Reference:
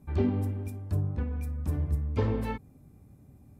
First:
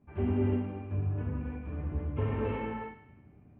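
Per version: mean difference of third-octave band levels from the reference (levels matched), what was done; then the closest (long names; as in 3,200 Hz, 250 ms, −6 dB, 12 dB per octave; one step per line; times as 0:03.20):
6.0 dB: elliptic low-pass filter 2,900 Hz, stop band 50 dB
low-shelf EQ 160 Hz −5 dB
on a send: feedback echo with a high-pass in the loop 104 ms, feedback 54%, high-pass 850 Hz, level −12 dB
on the sum: reverb whose tail is shaped and stops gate 390 ms flat, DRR −7.5 dB
level −7 dB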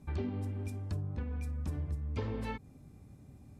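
4.0 dB: high-shelf EQ 2,500 Hz +10 dB
downward compressor 4 to 1, threshold −34 dBFS, peak gain reduction 11 dB
high-frequency loss of the air 62 metres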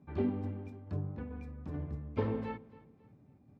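3.0 dB: high-pass filter 130 Hz 12 dB per octave
shaped tremolo saw down 2.3 Hz, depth 35%
high-frequency loss of the air 200 metres
on a send: repeating echo 273 ms, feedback 35%, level −20 dB
on the sum: level −2 dB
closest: third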